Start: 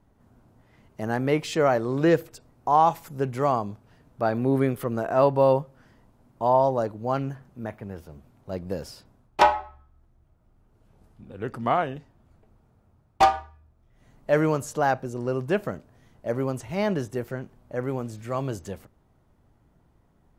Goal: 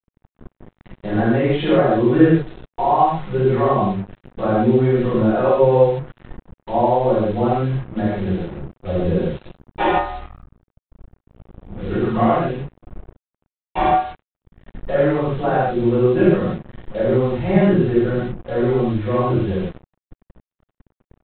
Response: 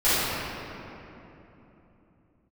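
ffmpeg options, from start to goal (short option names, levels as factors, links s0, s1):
-filter_complex "[0:a]acompressor=threshold=0.0355:ratio=2.5,aecho=1:1:5.3:0.49[s0];[1:a]atrim=start_sample=2205,afade=t=out:st=0.22:d=0.01,atrim=end_sample=10143[s1];[s0][s1]afir=irnorm=-1:irlink=0,asetrate=42336,aresample=44100,aresample=8000,acrusher=bits=4:mix=0:aa=0.5,aresample=44100,lowshelf=f=420:g=8,volume=0.447"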